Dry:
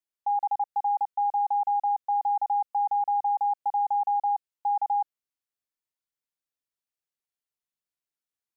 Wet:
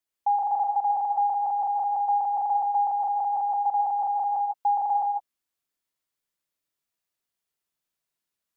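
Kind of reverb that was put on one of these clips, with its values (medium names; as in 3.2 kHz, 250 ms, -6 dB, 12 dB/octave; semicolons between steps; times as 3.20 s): gated-style reverb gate 180 ms rising, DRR 0 dB; trim +3.5 dB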